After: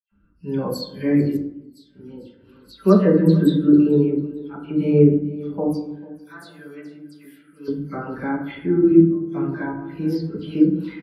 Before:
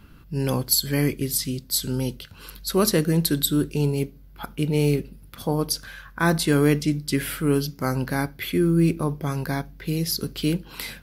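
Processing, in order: 5.57–7.57 s: pre-emphasis filter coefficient 0.9; feedback delay 445 ms, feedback 44%, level -14 dB; 8.72–9.23 s: level held to a coarse grid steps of 19 dB; tone controls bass -5 dB, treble -12 dB; phase dispersion lows, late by 116 ms, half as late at 3 kHz; 1.37–2.70 s: fade in; reverberation RT60 1.2 s, pre-delay 5 ms, DRR -1.5 dB; spectral contrast expander 1.5:1; trim +3 dB

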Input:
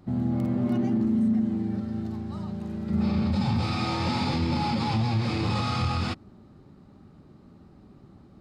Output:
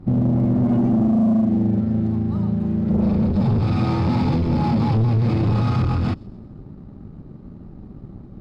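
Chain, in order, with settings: tilt EQ -3.5 dB/octave; saturation -16.5 dBFS, distortion -12 dB; on a send: feedback echo behind a high-pass 129 ms, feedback 45%, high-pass 3.8 kHz, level -22 dB; on the sum: compression, threshold -21 dBFS, peak gain reduction 3.5 dB; peaking EQ 76 Hz -12 dB 0.27 oct; in parallel at -5 dB: crossover distortion -43 dBFS; on the sum: trim +2.5 dB

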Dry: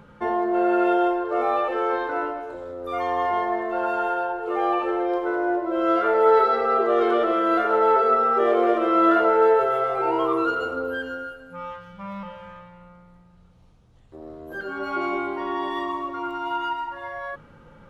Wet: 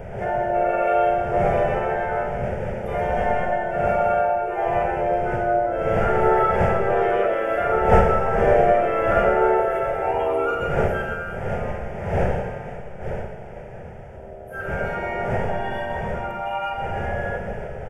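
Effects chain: wind noise 540 Hz -29 dBFS; harmony voices -3 st -2 dB; static phaser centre 1.1 kHz, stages 6; Schroeder reverb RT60 1.6 s, combs from 29 ms, DRR 3 dB; trim +1 dB

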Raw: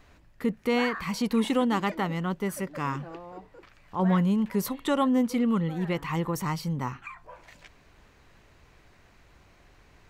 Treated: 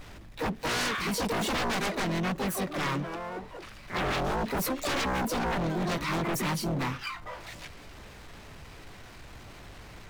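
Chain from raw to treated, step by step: harmony voices +4 st -6 dB, +12 st -5 dB; wavefolder -25 dBFS; power-law waveshaper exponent 0.7

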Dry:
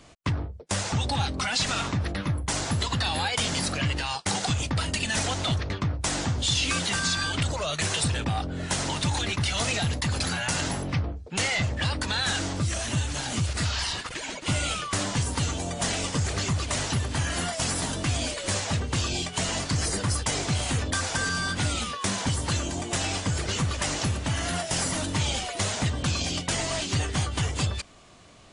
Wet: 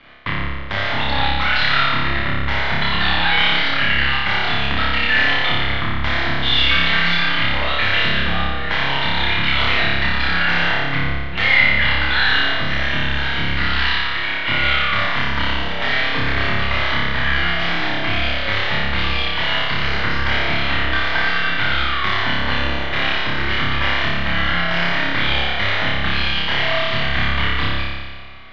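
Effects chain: partial rectifier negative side -12 dB; steep low-pass 4 kHz 36 dB/octave; peaking EQ 2 kHz +15 dB 1.9 oct; band-stop 2.6 kHz, Q 11; on a send: flutter echo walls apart 5 m, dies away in 1.5 s

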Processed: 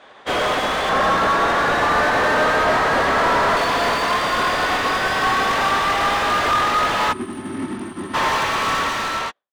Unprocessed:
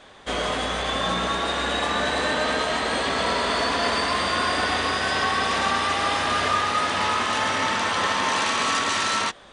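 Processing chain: fade out at the end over 0.74 s; 0.89–3.57 s: resonant high shelf 2.2 kHz -7.5 dB, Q 1.5; 7.12–8.14 s: time-frequency box 400–8600 Hz -26 dB; overdrive pedal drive 33 dB, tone 1.4 kHz, clips at -7.5 dBFS; upward expansion 2.5:1, over -45 dBFS

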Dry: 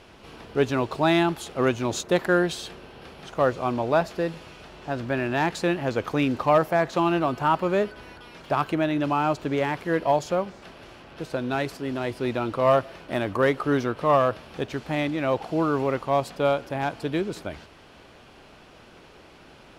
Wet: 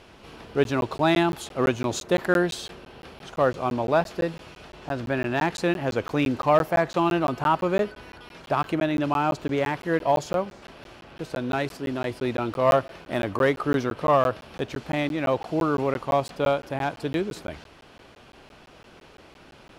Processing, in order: crackling interface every 0.17 s, samples 512, zero, from 0.64 s

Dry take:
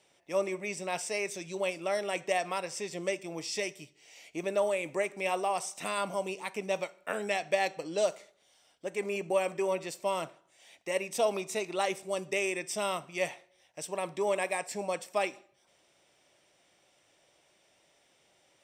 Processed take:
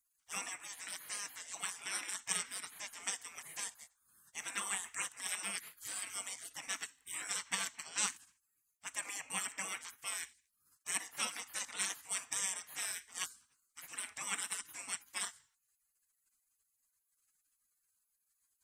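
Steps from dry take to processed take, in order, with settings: spectral gate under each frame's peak -25 dB weak; ten-band graphic EQ 500 Hz -3 dB, 2 kHz +6 dB, 4 kHz -6 dB, 8 kHz +7 dB; trim +4.5 dB

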